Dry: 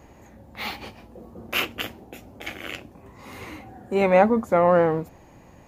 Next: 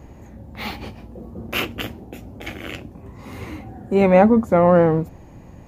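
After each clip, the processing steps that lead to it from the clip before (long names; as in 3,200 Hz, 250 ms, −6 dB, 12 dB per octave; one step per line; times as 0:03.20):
low-shelf EQ 350 Hz +11 dB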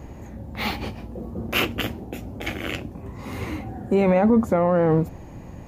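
brickwall limiter −13.5 dBFS, peak gain reduction 11.5 dB
level +3 dB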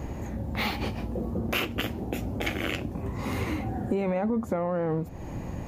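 downward compressor 5 to 1, threshold −30 dBFS, peak gain reduction 14.5 dB
level +4 dB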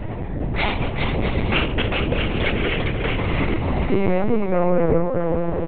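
bouncing-ball delay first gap 400 ms, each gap 0.6×, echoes 5
convolution reverb RT60 0.75 s, pre-delay 6 ms, DRR 10.5 dB
linear-prediction vocoder at 8 kHz pitch kept
level +7.5 dB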